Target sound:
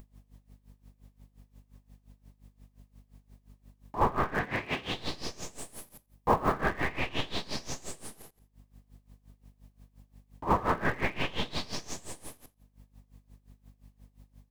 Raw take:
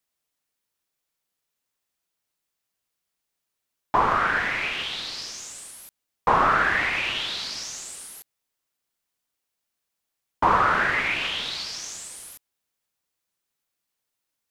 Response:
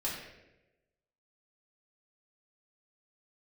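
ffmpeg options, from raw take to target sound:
-filter_complex "[0:a]bandreject=f=1400:w=6.5,asplit=2[s0][s1];[s1]acrusher=bits=4:dc=4:mix=0:aa=0.000001,volume=0.422[s2];[s0][s2]amix=inputs=2:normalize=0,asettb=1/sr,asplit=3[s3][s4][s5];[s3]atrim=end=4.374[s6];[s4]atrim=start=4.37:end=4.92,asetpts=PTS-STARTPTS,afade=t=in:d=0.004:c=qsin,afade=t=out:st=0.546:d=0.004:c=qsin,highpass=59[s7];[s5]atrim=start=4.916[s8];[s6][s7]acrossfade=d=0.004:c1=hsin:c2=qsin[s9];[s9][s8]acrossfade=d=0.004:c1=qsin:c2=hsin,asettb=1/sr,asplit=3[s10][s11][s12];[s10]atrim=end=5.584[s13];[s11]atrim=start=5.58:end=6.54,asetpts=PTS-STARTPTS,afade=t=in:d=0.004:c=qsin,afade=t=out:st=0.956:d=0.004:c=qsin,highshelf=f=10000:g=6.5[s14];[s12]atrim=start=6.536[s15];[s13][s14]acrossfade=d=0.004:c1=hsin:c2=qsin[s16];[s16][s15]acrossfade=d=0.004:c1=qsin:c2=hsin,aecho=1:1:85|170|255:0.422|0.0759|0.0137,alimiter=limit=0.112:level=0:latency=1:release=92,tiltshelf=f=1100:g=9.5,aeval=exprs='val(0)+0.000398*(sin(2*PI*50*n/s)+sin(2*PI*2*50*n/s)/2+sin(2*PI*3*50*n/s)/3+sin(2*PI*4*50*n/s)/4+sin(2*PI*5*50*n/s)/5)':c=same,acompressor=mode=upward:threshold=0.00891:ratio=2.5,aeval=exprs='val(0)*pow(10,-19*(0.5-0.5*cos(2*PI*5.7*n/s))/20)':c=same,volume=1.5"

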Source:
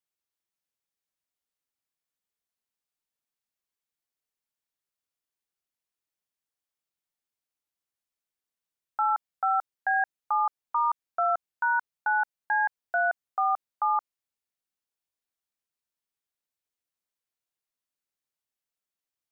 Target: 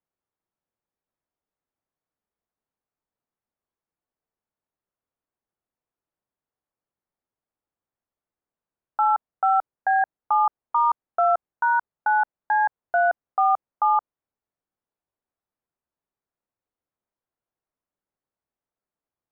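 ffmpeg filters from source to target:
-af "lowpass=1100,acontrast=83,volume=1.12"

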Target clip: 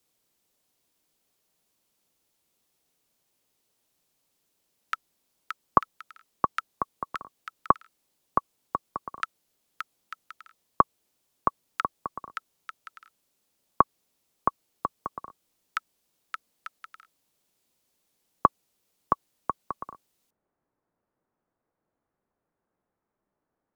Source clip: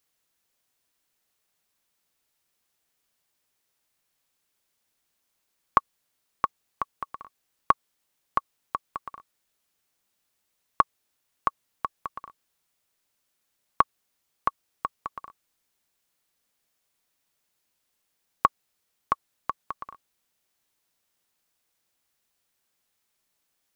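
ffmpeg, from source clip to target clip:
-filter_complex "[0:a]acrossover=split=140|520|1500[s0][s1][s2][s3];[s1]acontrast=32[s4];[s3]asetrate=51597,aresample=44100[s5];[s0][s4][s2][s5]amix=inputs=4:normalize=0,volume=1.33"

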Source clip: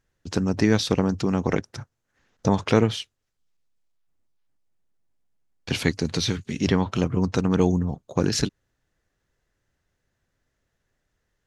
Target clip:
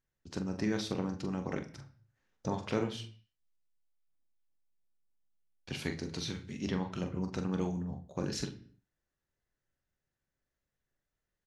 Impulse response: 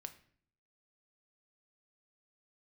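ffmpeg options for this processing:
-filter_complex "[0:a]asplit=2[s0][s1];[s1]adelay=43,volume=0.398[s2];[s0][s2]amix=inputs=2:normalize=0[s3];[1:a]atrim=start_sample=2205,afade=t=out:st=0.38:d=0.01,atrim=end_sample=17199[s4];[s3][s4]afir=irnorm=-1:irlink=0,volume=0.376"

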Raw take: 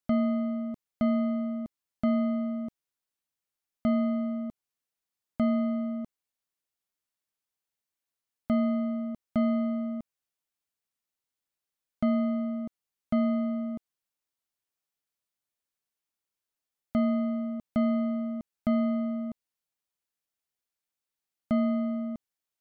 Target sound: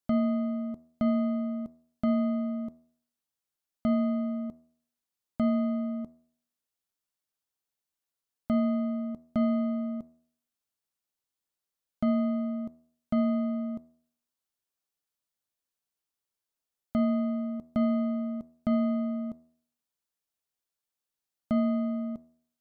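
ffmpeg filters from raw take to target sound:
-af "equalizer=f=2200:t=o:w=0.7:g=-3.5,bandreject=f=80.27:t=h:w=4,bandreject=f=160.54:t=h:w=4,bandreject=f=240.81:t=h:w=4,bandreject=f=321.08:t=h:w=4,bandreject=f=401.35:t=h:w=4,bandreject=f=481.62:t=h:w=4,bandreject=f=561.89:t=h:w=4,bandreject=f=642.16:t=h:w=4,bandreject=f=722.43:t=h:w=4,bandreject=f=802.7:t=h:w=4,bandreject=f=882.97:t=h:w=4,bandreject=f=963.24:t=h:w=4,bandreject=f=1043.51:t=h:w=4,bandreject=f=1123.78:t=h:w=4,bandreject=f=1204.05:t=h:w=4,bandreject=f=1284.32:t=h:w=4,bandreject=f=1364.59:t=h:w=4,bandreject=f=1444.86:t=h:w=4,bandreject=f=1525.13:t=h:w=4,bandreject=f=1605.4:t=h:w=4,bandreject=f=1685.67:t=h:w=4,bandreject=f=1765.94:t=h:w=4,bandreject=f=1846.21:t=h:w=4,bandreject=f=1926.48:t=h:w=4,bandreject=f=2006.75:t=h:w=4,bandreject=f=2087.02:t=h:w=4"

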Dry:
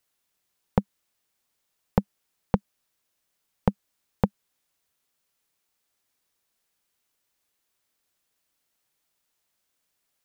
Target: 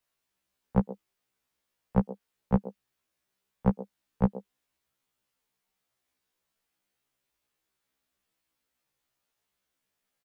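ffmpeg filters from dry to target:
-filter_complex "[0:a]bass=f=250:g=2,treble=f=4000:g=-5,acrossover=split=270|670|1900[s0][s1][s2][s3];[s1]aecho=1:1:128:0.531[s4];[s3]alimiter=level_in=6.31:limit=0.0631:level=0:latency=1:release=27,volume=0.158[s5];[s0][s4][s2][s5]amix=inputs=4:normalize=0,afftfilt=real='re*1.73*eq(mod(b,3),0)':imag='im*1.73*eq(mod(b,3),0)':win_size=2048:overlap=0.75"

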